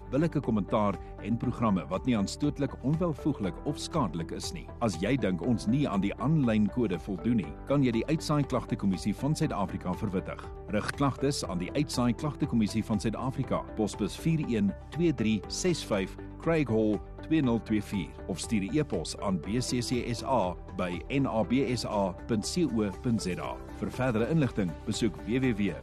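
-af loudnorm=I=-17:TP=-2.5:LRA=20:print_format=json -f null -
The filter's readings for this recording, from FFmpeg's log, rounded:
"input_i" : "-30.2",
"input_tp" : "-15.2",
"input_lra" : "2.4",
"input_thresh" : "-40.3",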